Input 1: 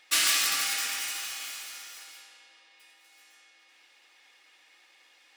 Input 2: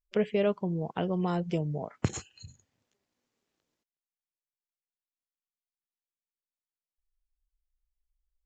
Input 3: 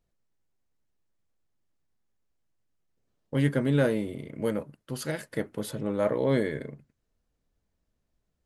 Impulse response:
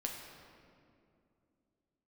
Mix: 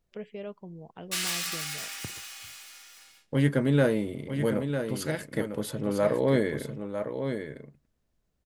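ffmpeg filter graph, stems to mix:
-filter_complex "[0:a]agate=range=-20dB:threshold=-48dB:ratio=16:detection=peak,adelay=1000,volume=-6.5dB[a];[1:a]volume=-12.5dB[b];[2:a]volume=1dB,asplit=2[c][d];[d]volume=-7.5dB,aecho=0:1:951:1[e];[a][b][c][e]amix=inputs=4:normalize=0"

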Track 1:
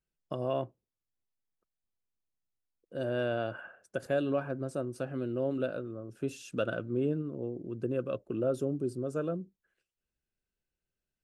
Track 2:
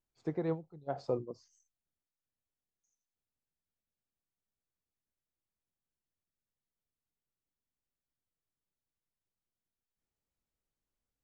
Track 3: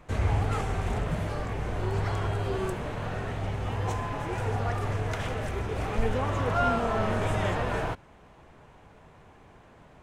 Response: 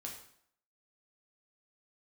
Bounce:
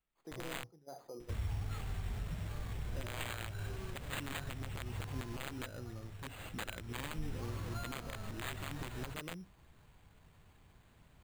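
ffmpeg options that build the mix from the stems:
-filter_complex "[0:a]aeval=exprs='(mod(18.8*val(0)+1,2)-1)/18.8':c=same,volume=0.5dB[a];[1:a]highpass=200,alimiter=level_in=8.5dB:limit=-24dB:level=0:latency=1:release=14,volume=-8.5dB,volume=-9dB,asplit=2[b][c];[c]volume=-8dB[d];[2:a]acompressor=threshold=-32dB:ratio=2.5,adelay=1200,volume=5.5dB,afade=t=out:st=5.28:d=0.42:silence=0.354813,afade=t=in:st=6.68:d=0.51:silence=0.398107[e];[a][e]amix=inputs=2:normalize=0,equalizer=f=580:w=0.37:g=-13.5,alimiter=level_in=3.5dB:limit=-24dB:level=0:latency=1:release=139,volume=-3.5dB,volume=0dB[f];[3:a]atrim=start_sample=2205[g];[d][g]afir=irnorm=-1:irlink=0[h];[b][f][h]amix=inputs=3:normalize=0,acrusher=samples=8:mix=1:aa=0.000001"

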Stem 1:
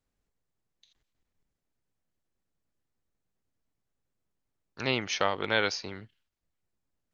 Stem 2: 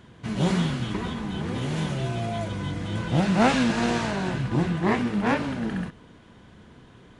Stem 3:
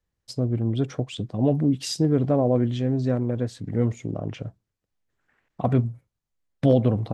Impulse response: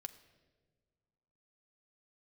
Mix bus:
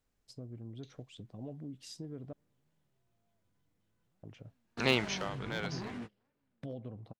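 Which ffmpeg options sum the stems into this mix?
-filter_complex "[0:a]asoftclip=type=hard:threshold=-14dB,afade=t=out:st=4.91:d=0.32:silence=0.223872,asplit=3[a][b][c];[b]volume=-12.5dB[d];[1:a]acompressor=threshold=-32dB:ratio=8,volume=33dB,asoftclip=hard,volume=-33dB,adelay=950,volume=-5dB[e];[2:a]acompressor=threshold=-29dB:ratio=2,volume=-17dB,asplit=3[f][g][h];[f]atrim=end=2.33,asetpts=PTS-STARTPTS,afade=t=out:st=2.326:d=0.004:c=hsin[i];[g]atrim=start=2.33:end=4.23,asetpts=PTS-STARTPTS,volume=0[j];[h]atrim=start=4.23,asetpts=PTS-STARTPTS,afade=t=in:d=0.004:c=hsin[k];[i][j][k]concat=n=3:v=0:a=1,asplit=2[l][m];[m]volume=-21.5dB[n];[c]apad=whole_len=359073[o];[e][o]sidechaingate=range=-39dB:threshold=-58dB:ratio=16:detection=peak[p];[3:a]atrim=start_sample=2205[q];[d][n]amix=inputs=2:normalize=0[r];[r][q]afir=irnorm=-1:irlink=0[s];[a][p][l][s]amix=inputs=4:normalize=0"

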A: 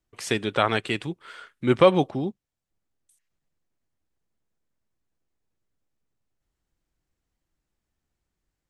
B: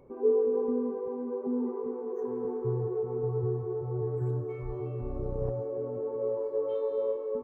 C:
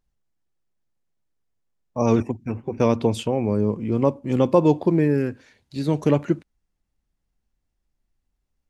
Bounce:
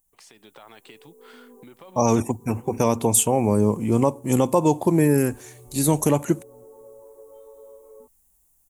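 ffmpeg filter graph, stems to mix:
-filter_complex "[0:a]alimiter=limit=-13.5dB:level=0:latency=1:release=21,acompressor=threshold=-35dB:ratio=2.5,highpass=160,volume=-13dB,asplit=2[a][b];[1:a]adelay=650,volume=-18.5dB[c];[2:a]aexciter=amount=6:drive=9.6:freq=6.9k,alimiter=limit=-11dB:level=0:latency=1:release=291,volume=-5dB[d];[b]apad=whole_len=356331[e];[c][e]sidechaincompress=threshold=-56dB:ratio=8:attack=16:release=811[f];[a][f]amix=inputs=2:normalize=0,acompressor=threshold=-52dB:ratio=6,volume=0dB[g];[d][g]amix=inputs=2:normalize=0,firequalizer=gain_entry='entry(490,0);entry(840,7);entry(1400,0);entry(4600,4)':delay=0.05:min_phase=1,dynaudnorm=f=280:g=3:m=8dB"

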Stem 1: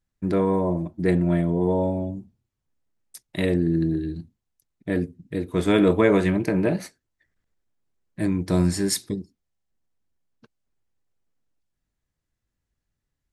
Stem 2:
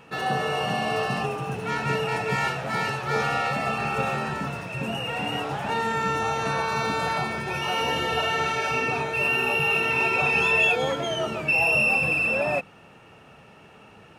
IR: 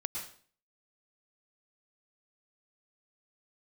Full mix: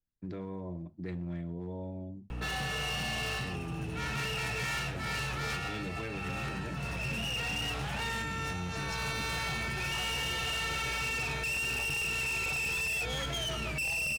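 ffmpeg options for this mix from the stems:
-filter_complex "[0:a]lowpass=f=5.9k:w=0.5412,lowpass=f=5.9k:w=1.3066,bandreject=f=50:t=h:w=6,bandreject=f=100:t=h:w=6,bandreject=f=150:t=h:w=6,bandreject=f=200:t=h:w=6,volume=-14.5dB,asplit=2[a][b];[1:a]aeval=exprs='val(0)+0.00891*(sin(2*PI*60*n/s)+sin(2*PI*2*60*n/s)/2+sin(2*PI*3*60*n/s)/3+sin(2*PI*4*60*n/s)/4+sin(2*PI*5*60*n/s)/5)':c=same,adelay=2300,volume=1.5dB[c];[b]apad=whole_len=726808[d];[c][d]sidechaincompress=threshold=-41dB:ratio=8:attack=29:release=291[e];[a][e]amix=inputs=2:normalize=0,lowshelf=f=500:g=4.5,acrossover=split=140|1700[f][g][h];[f]acompressor=threshold=-35dB:ratio=4[i];[g]acompressor=threshold=-41dB:ratio=4[j];[h]acompressor=threshold=-26dB:ratio=4[k];[i][j][k]amix=inputs=3:normalize=0,asoftclip=type=hard:threshold=-31.5dB"

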